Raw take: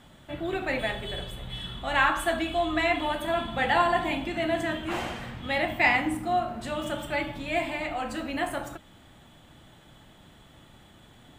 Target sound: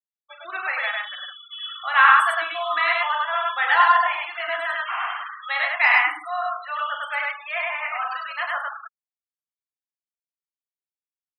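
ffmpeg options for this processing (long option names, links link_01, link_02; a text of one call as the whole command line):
ffmpeg -i in.wav -filter_complex "[0:a]highpass=frequency=1200:width_type=q:width=3.4,agate=range=-33dB:threshold=-43dB:ratio=3:detection=peak,afftfilt=real='re*gte(hypot(re,im),0.0316)':imag='im*gte(hypot(re,im),0.0316)':win_size=1024:overlap=0.75,asplit=2[link_01][link_02];[link_02]aecho=0:1:40.82|102:0.355|0.891[link_03];[link_01][link_03]amix=inputs=2:normalize=0,volume=1dB" out.wav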